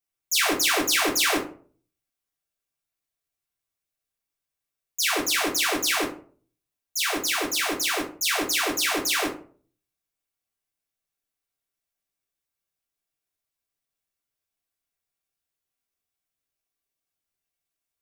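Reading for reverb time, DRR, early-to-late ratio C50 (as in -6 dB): 0.45 s, -6.0 dB, 8.5 dB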